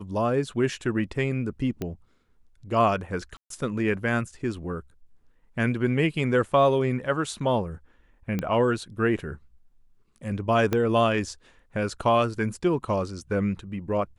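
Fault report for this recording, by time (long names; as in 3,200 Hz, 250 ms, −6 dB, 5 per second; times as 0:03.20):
0:01.82: click −17 dBFS
0:03.37–0:03.50: drop-out 133 ms
0:08.39: click −15 dBFS
0:10.73: click −11 dBFS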